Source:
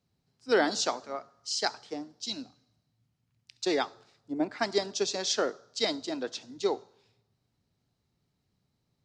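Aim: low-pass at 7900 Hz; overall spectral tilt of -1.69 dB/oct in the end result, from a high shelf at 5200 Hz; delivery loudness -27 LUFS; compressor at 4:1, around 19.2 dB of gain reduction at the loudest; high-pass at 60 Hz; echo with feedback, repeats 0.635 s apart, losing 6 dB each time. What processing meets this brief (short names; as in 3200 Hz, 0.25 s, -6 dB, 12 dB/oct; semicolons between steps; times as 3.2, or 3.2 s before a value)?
HPF 60 Hz; LPF 7900 Hz; high shelf 5200 Hz +6 dB; compressor 4:1, threshold -44 dBFS; feedback echo 0.635 s, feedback 50%, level -6 dB; gain +18 dB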